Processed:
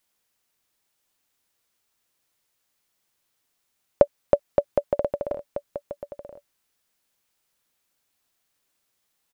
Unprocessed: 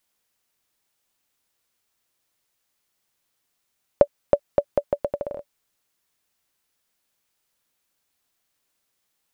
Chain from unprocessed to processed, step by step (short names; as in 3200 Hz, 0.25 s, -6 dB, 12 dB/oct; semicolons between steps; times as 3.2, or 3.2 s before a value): echo 0.982 s -11 dB